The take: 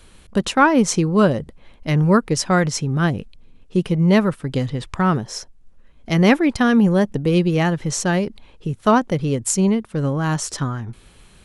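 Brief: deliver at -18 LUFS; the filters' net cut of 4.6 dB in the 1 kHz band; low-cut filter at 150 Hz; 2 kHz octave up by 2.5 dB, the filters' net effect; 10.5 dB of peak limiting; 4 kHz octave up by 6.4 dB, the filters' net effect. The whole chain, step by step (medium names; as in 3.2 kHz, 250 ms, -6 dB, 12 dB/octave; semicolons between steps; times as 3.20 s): high-pass 150 Hz; peaking EQ 1 kHz -8.5 dB; peaking EQ 2 kHz +5 dB; peaking EQ 4 kHz +8 dB; trim +3.5 dB; peak limiter -6.5 dBFS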